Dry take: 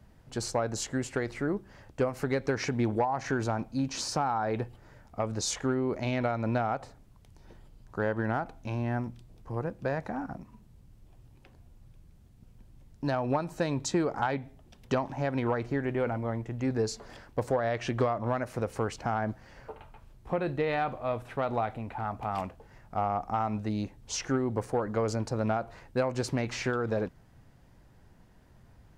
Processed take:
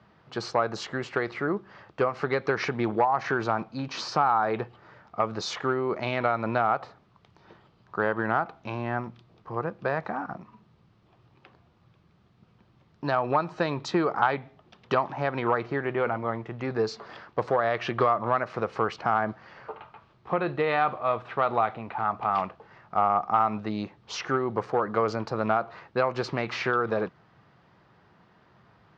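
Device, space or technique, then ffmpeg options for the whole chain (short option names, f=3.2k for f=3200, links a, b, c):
kitchen radio: -af "highpass=180,equalizer=f=260:t=q:w=4:g=-9,equalizer=f=540:t=q:w=4:g=-3,equalizer=f=1.2k:t=q:w=4:g=8,lowpass=f=4.5k:w=0.5412,lowpass=f=4.5k:w=1.3066,volume=5dB"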